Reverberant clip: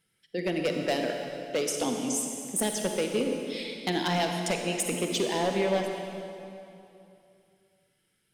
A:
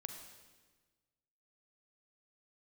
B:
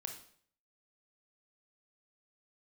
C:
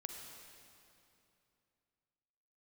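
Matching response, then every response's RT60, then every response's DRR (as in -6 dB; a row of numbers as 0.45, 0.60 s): C; 1.4, 0.55, 2.8 s; 4.5, 3.5, 3.0 dB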